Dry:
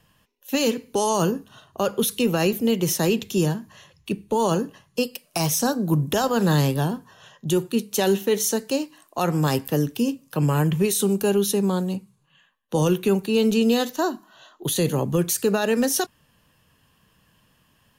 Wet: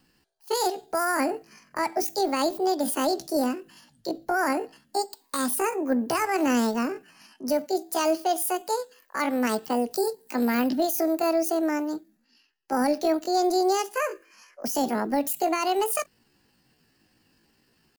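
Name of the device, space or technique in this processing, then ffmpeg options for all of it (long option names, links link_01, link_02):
chipmunk voice: -filter_complex "[0:a]asetrate=72056,aresample=44100,atempo=0.612027,asettb=1/sr,asplit=3[link_01][link_02][link_03];[link_01]atrim=end=9.914[link_04];[link_02]atrim=start=9.91:end=10.7,asetpts=PTS-STARTPTS,afade=type=in:duration=0.004:curve=qsin,afade=type=out:start_time=0.786:duration=0.004:curve=qsin,highshelf=frequency=6100:gain=8.5[link_05];[link_03]atrim=start=10.696[link_06];[link_04][link_05]acrossfade=duration=0.004:curve1=hsin:curve2=qsin[link_07];[link_07][link_06]acrossfade=duration=0.004:curve1=qsin:curve2=hsin,volume=-3.5dB"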